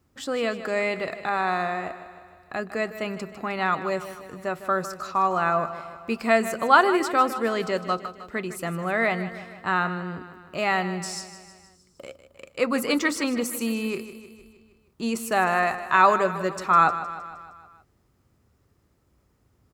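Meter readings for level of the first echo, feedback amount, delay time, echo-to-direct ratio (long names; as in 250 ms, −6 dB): −13.0 dB, 58%, 155 ms, −11.0 dB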